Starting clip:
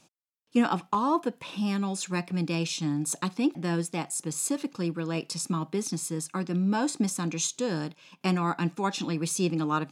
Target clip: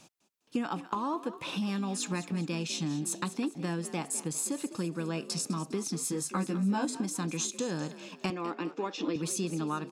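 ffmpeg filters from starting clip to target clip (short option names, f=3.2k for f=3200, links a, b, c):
-filter_complex "[0:a]acompressor=threshold=-35dB:ratio=6,asettb=1/sr,asplit=3[a][b][c];[a]atrim=end=6.034[d];[b]atrim=start=6.03:end=6.85,asetpts=PTS-STARTPTS,afade=t=in:d=0.004:c=qsin,afade=t=out:st=0.816:d=0.004:c=qsin,asplit=2[e][f];[f]adelay=15,volume=-2.5dB[g];[e][g]amix=inputs=2:normalize=0,atrim=end_sample=36162[h];[c]atrim=start=6.846[i];[d][h]acrossfade=d=0.004:c1=hsin:c2=qsin[j];[j][i]acrossfade=d=0.004:c1=qsin:c2=hsin,asettb=1/sr,asplit=3[k][l][m];[k]atrim=end=8.304[n];[l]atrim=start=8.3:end=9.16,asetpts=PTS-STARTPTS,afade=t=in:d=0.004:c=qsin,afade=t=out:st=0.856:d=0.004:c=qsin,highpass=310,equalizer=f=310:t=q:w=4:g=9,equalizer=f=490:t=q:w=4:g=7,equalizer=f=820:t=q:w=4:g=-4,equalizer=f=1.5k:t=q:w=4:g=-5,equalizer=f=4.1k:t=q:w=4:g=-5,lowpass=f=5.5k:w=0.5412,lowpass=f=5.5k:w=1.3066[o];[m]atrim=start=9.156[p];[n][o]acrossfade=d=0.004:c1=hsin:c2=qsin[q];[q][p]acrossfade=d=0.004:c1=qsin:c2=hsin,asplit=5[r][s][t][u][v];[s]adelay=203,afreqshift=47,volume=-14dB[w];[t]adelay=406,afreqshift=94,volume=-21.3dB[x];[u]adelay=609,afreqshift=141,volume=-28.7dB[y];[v]adelay=812,afreqshift=188,volume=-36dB[z];[r][w][x][y][z]amix=inputs=5:normalize=0,volume=4.5dB"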